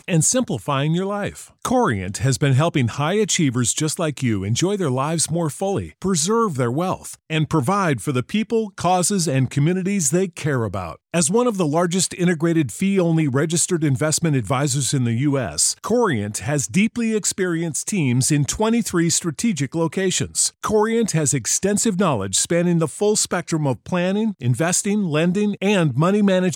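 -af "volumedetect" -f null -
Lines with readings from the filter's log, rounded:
mean_volume: -19.8 dB
max_volume: -5.8 dB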